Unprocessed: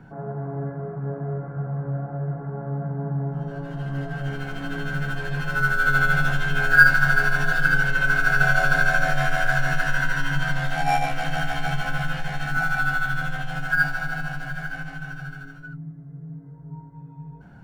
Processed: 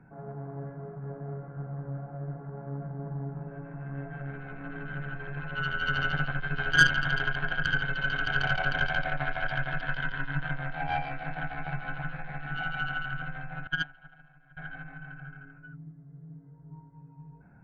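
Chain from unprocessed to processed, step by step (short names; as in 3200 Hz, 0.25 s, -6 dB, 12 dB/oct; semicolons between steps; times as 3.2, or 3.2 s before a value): brick-wall FIR low-pass 2700 Hz; added harmonics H 3 -20 dB, 4 -16 dB, 8 -30 dB, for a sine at -1.5 dBFS; 13.67–14.57 upward expander 2.5:1, over -32 dBFS; gain -6 dB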